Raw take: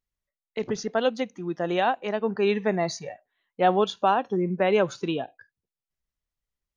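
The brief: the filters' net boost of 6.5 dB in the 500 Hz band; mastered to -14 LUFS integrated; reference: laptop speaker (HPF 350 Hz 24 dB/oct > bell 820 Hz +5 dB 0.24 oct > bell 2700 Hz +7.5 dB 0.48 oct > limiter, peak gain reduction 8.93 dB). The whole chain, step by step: HPF 350 Hz 24 dB/oct; bell 500 Hz +8.5 dB; bell 820 Hz +5 dB 0.24 oct; bell 2700 Hz +7.5 dB 0.48 oct; gain +10.5 dB; limiter -3 dBFS

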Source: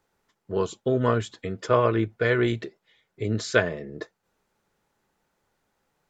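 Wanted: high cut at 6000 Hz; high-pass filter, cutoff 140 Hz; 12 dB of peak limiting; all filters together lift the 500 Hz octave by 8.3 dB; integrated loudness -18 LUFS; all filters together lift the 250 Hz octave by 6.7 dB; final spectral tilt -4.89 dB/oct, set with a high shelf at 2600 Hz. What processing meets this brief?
HPF 140 Hz; LPF 6000 Hz; bell 250 Hz +6 dB; bell 500 Hz +8 dB; high shelf 2600 Hz +7 dB; gain +5.5 dB; limiter -6 dBFS

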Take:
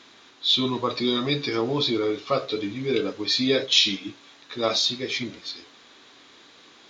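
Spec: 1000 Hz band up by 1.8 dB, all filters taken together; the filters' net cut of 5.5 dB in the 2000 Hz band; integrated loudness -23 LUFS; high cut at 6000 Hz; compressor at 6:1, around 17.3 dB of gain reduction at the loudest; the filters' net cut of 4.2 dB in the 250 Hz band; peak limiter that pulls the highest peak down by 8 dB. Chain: LPF 6000 Hz; bell 250 Hz -5.5 dB; bell 1000 Hz +5 dB; bell 2000 Hz -8 dB; compressor 6:1, threshold -38 dBFS; gain +19.5 dB; limiter -12 dBFS

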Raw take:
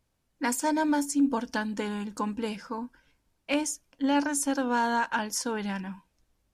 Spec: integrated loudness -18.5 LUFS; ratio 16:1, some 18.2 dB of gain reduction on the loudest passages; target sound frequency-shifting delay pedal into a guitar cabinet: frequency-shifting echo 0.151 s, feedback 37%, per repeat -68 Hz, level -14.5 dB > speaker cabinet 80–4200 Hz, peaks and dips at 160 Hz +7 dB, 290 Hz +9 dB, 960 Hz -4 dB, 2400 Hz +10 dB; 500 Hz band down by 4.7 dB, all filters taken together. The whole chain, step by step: bell 500 Hz -7 dB; compressor 16:1, threshold -40 dBFS; frequency-shifting echo 0.151 s, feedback 37%, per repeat -68 Hz, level -14.5 dB; speaker cabinet 80–4200 Hz, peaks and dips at 160 Hz +7 dB, 290 Hz +9 dB, 960 Hz -4 dB, 2400 Hz +10 dB; gain +21.5 dB

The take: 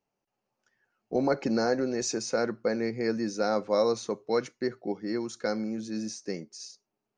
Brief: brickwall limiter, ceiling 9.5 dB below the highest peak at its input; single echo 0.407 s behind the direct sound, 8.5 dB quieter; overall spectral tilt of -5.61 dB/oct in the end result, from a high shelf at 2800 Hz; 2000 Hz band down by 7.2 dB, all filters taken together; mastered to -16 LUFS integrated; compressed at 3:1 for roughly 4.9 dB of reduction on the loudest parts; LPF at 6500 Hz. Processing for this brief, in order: LPF 6500 Hz; bell 2000 Hz -7.5 dB; high shelf 2800 Hz -8.5 dB; compressor 3:1, threshold -28 dBFS; limiter -28.5 dBFS; echo 0.407 s -8.5 dB; gain +22 dB

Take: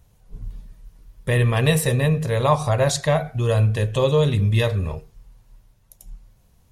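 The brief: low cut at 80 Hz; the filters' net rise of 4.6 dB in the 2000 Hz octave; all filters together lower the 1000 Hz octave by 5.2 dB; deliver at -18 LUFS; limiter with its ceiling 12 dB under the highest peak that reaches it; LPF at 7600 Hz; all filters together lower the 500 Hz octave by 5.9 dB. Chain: HPF 80 Hz; LPF 7600 Hz; bell 500 Hz -5.5 dB; bell 1000 Hz -6.5 dB; bell 2000 Hz +7.5 dB; gain +8 dB; limiter -9.5 dBFS

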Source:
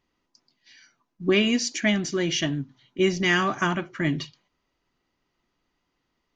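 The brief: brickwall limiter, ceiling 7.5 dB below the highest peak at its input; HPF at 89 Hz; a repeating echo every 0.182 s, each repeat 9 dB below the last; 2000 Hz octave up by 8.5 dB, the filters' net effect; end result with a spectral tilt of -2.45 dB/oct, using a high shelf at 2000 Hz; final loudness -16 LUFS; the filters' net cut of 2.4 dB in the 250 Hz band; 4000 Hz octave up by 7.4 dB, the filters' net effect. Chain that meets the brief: HPF 89 Hz; bell 250 Hz -3.5 dB; high shelf 2000 Hz +4 dB; bell 2000 Hz +7 dB; bell 4000 Hz +3 dB; limiter -10 dBFS; feedback echo 0.182 s, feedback 35%, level -9 dB; gain +5.5 dB

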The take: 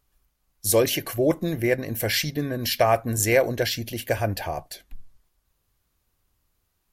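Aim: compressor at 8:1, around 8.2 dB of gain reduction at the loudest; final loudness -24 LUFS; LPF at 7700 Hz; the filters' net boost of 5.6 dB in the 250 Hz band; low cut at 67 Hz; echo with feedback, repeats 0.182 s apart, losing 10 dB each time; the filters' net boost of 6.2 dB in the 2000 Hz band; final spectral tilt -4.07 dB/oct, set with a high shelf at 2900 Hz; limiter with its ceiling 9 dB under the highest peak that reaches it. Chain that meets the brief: HPF 67 Hz; LPF 7700 Hz; bell 250 Hz +7.5 dB; bell 2000 Hz +5.5 dB; high shelf 2900 Hz +4.5 dB; compressor 8:1, threshold -20 dBFS; limiter -16.5 dBFS; feedback echo 0.182 s, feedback 32%, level -10 dB; gain +3 dB

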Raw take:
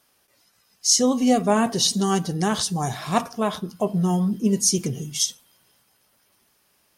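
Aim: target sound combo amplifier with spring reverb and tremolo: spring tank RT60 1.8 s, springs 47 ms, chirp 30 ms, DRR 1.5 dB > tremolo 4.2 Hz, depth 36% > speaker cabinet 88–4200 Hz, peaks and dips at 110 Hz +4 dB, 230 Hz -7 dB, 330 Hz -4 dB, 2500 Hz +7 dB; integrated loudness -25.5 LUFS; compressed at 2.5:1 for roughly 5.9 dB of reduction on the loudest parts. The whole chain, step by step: compressor 2.5:1, threshold -23 dBFS; spring tank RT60 1.8 s, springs 47 ms, chirp 30 ms, DRR 1.5 dB; tremolo 4.2 Hz, depth 36%; speaker cabinet 88–4200 Hz, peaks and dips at 110 Hz +4 dB, 230 Hz -7 dB, 330 Hz -4 dB, 2500 Hz +7 dB; gain +3.5 dB

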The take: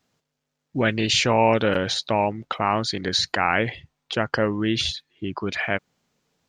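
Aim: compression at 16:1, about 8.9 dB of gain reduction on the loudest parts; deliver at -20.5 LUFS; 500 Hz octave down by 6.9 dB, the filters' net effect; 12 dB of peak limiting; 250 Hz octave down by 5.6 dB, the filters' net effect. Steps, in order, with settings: bell 250 Hz -5 dB; bell 500 Hz -7.5 dB; compressor 16:1, threshold -27 dBFS; gain +14.5 dB; limiter -9.5 dBFS

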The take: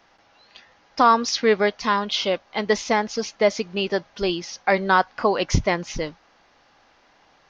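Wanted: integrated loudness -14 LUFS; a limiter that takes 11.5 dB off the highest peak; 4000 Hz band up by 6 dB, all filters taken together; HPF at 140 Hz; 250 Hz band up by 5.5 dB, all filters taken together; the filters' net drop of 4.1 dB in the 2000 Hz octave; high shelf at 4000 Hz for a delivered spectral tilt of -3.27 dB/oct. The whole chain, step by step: HPF 140 Hz; bell 250 Hz +8 dB; bell 2000 Hz -8.5 dB; high shelf 4000 Hz +7.5 dB; bell 4000 Hz +5.5 dB; gain +11.5 dB; limiter -3 dBFS

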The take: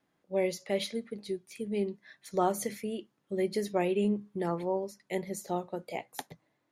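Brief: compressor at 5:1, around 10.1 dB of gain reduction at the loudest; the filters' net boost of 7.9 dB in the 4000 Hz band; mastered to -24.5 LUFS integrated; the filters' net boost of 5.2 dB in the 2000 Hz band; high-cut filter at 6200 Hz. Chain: LPF 6200 Hz; bell 2000 Hz +3.5 dB; bell 4000 Hz +9 dB; compressor 5:1, threshold -35 dBFS; gain +16 dB

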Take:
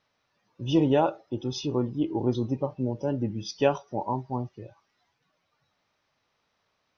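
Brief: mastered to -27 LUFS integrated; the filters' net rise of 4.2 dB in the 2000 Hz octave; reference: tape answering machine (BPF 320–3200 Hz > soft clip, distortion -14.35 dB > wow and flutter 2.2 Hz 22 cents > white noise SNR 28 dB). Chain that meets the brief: BPF 320–3200 Hz; bell 2000 Hz +7 dB; soft clip -17.5 dBFS; wow and flutter 2.2 Hz 22 cents; white noise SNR 28 dB; gain +5 dB

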